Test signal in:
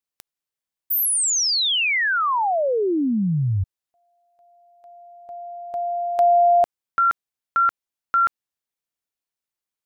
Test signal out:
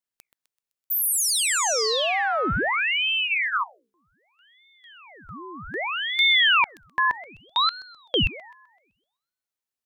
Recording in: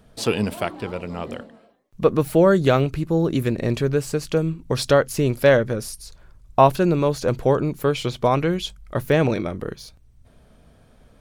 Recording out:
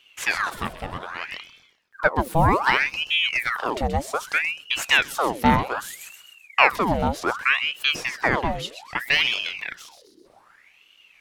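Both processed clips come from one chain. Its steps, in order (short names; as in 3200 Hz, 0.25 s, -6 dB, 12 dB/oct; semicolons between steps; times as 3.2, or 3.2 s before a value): notches 60/120/180 Hz; thin delay 0.128 s, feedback 42%, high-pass 2400 Hz, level -8 dB; ring modulator with a swept carrier 1600 Hz, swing 80%, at 0.64 Hz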